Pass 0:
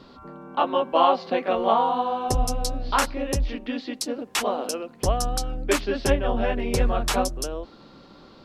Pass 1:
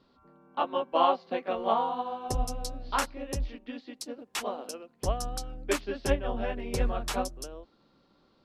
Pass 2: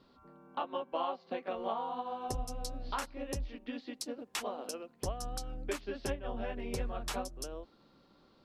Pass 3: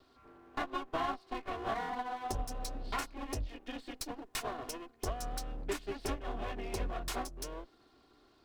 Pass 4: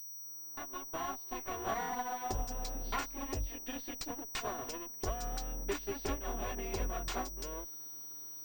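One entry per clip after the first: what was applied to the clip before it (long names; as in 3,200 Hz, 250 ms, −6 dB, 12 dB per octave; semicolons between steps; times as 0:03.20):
expander for the loud parts 1.5 to 1, over −40 dBFS; level −4.5 dB
downward compressor 3 to 1, threshold −37 dBFS, peak gain reduction 14 dB; level +1 dB
lower of the sound and its delayed copy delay 2.8 ms; level +1 dB
fade in at the beginning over 1.81 s; steady tone 5,800 Hz −47 dBFS; switching amplifier with a slow clock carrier 16,000 Hz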